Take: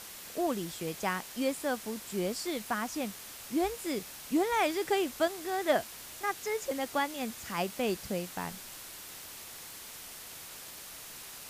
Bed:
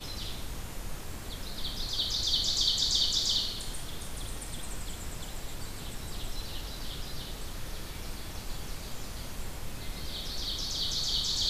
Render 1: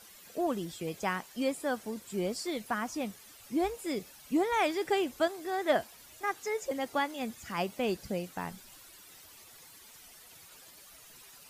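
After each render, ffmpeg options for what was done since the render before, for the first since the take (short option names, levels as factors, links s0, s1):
-af "afftdn=nr=12:nf=-47"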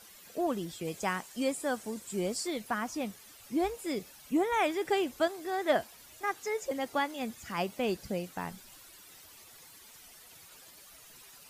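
-filter_complex "[0:a]asettb=1/sr,asplit=3[s0][s1][s2];[s0]atrim=end=0.854[s3];[s1]atrim=start=0.85:end=2.48,asetpts=PTS-STARTPTS,afade=t=in:d=0.004:c=qsin,afade=t=out:st=1.626:d=0.004:c=qsin,equalizer=f=8000:w=1.5:g=6[s4];[s2]atrim=start=2.476[s5];[s3][s4]acrossfade=d=0.004:c1=hsin:c2=qsin[s6];[s6][s5]acrossfade=d=0.004:c1=qsin:c2=hsin,asettb=1/sr,asplit=3[s7][s8][s9];[s7]atrim=end=4.304[s10];[s8]atrim=start=4.3:end=4.85,asetpts=PTS-STARTPTS,afade=t=in:d=0.004:c=qsin,afade=t=out:st=0.546:d=0.004:c=qsin,equalizer=f=4600:w=3.6:g=-8.5[s11];[s9]atrim=start=4.846[s12];[s10][s11]acrossfade=d=0.004:c1=hsin:c2=qsin[s13];[s13][s12]acrossfade=d=0.004:c1=qsin:c2=hsin"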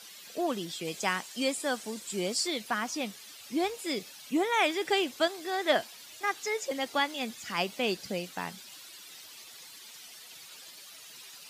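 -af "highpass=150,equalizer=f=3900:w=0.65:g=9.5"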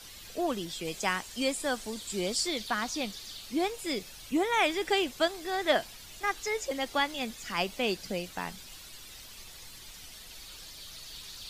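-filter_complex "[1:a]volume=0.141[s0];[0:a][s0]amix=inputs=2:normalize=0"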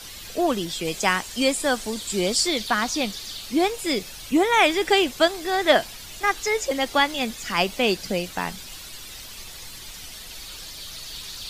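-af "volume=2.66"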